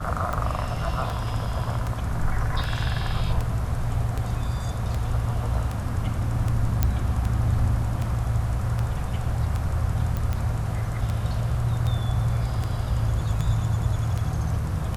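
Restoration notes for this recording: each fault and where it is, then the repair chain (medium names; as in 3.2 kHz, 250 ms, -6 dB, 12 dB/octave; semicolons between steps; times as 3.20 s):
tick 78 rpm -16 dBFS
6.83 s: pop -8 dBFS
10.17 s: pop -16 dBFS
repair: de-click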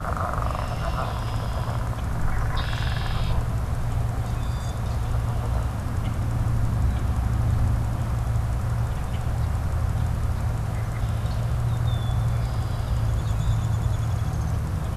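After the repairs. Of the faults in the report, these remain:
nothing left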